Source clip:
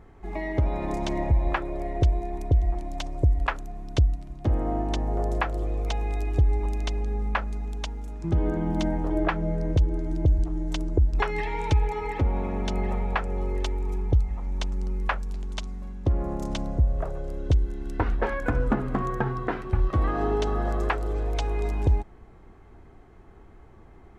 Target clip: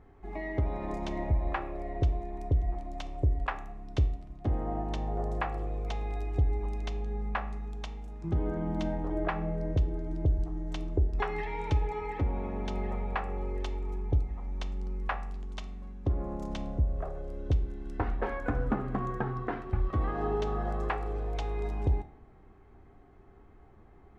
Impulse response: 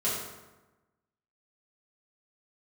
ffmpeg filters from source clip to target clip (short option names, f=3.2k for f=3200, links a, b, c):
-filter_complex "[0:a]highshelf=f=5.3k:g=-10,asplit=2[a][b];[1:a]atrim=start_sample=2205,asetrate=79380,aresample=44100[c];[b][c]afir=irnorm=-1:irlink=0,volume=-11dB[d];[a][d]amix=inputs=2:normalize=0,volume=-7dB"